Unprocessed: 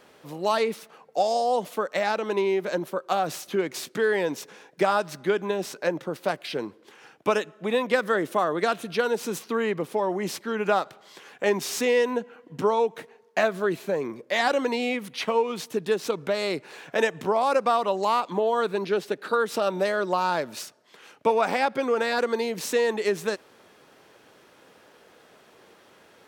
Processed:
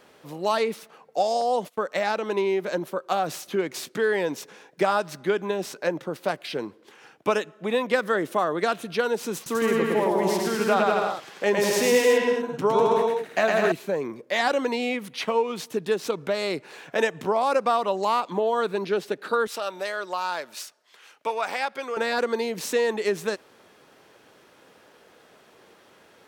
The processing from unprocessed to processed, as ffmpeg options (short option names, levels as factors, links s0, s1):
-filter_complex "[0:a]asettb=1/sr,asplit=3[s0][s1][s2];[s0]atrim=end=1.414[s3];[s1]atrim=start=1.41:end=1.86,asetpts=PTS-STARTPTS,afade=t=in:d=0.004:c=qsin,afade=t=out:st=0.446:d=0.004:c=qsin,agate=range=0.0794:threshold=0.00891:ratio=16:release=100:detection=peak[s4];[s2]atrim=start=1.856[s5];[s3][s4]acrossfade=d=0.004:c1=hsin:c2=qsin[s6];[s6][s5]acrossfade=d=0.004:c1=qsin:c2=hsin,asettb=1/sr,asplit=3[s7][s8][s9];[s7]atrim=end=9.354[s10];[s8]atrim=start=9.35:end=13.72,asetpts=PTS-STARTPTS,afade=t=in:d=0.004:c=qsin,afade=t=out:st=4.366:d=0.004:c=qsin,aecho=1:1:110|198|268.4|324.7|369.8:0.794|0.631|0.501|0.398|0.316,atrim=end_sample=192717[s11];[s9]atrim=start=13.716[s12];[s10][s11]acrossfade=d=0.004:c1=hsin:c2=qsin[s13];[s13][s12]acrossfade=d=0.004:c1=qsin:c2=hsin,asettb=1/sr,asplit=3[s14][s15][s16];[s14]atrim=end=19.474[s17];[s15]atrim=start=19.47:end=21.97,asetpts=PTS-STARTPTS,afade=t=in:d=0.004:c=qsin,afade=t=out:st=2.496:d=0.004:c=qsin,highpass=f=1100:p=1[s18];[s16]atrim=start=21.966[s19];[s17][s18]acrossfade=d=0.004:c1=hsin:c2=qsin[s20];[s20][s19]acrossfade=d=0.004:c1=qsin:c2=hsin"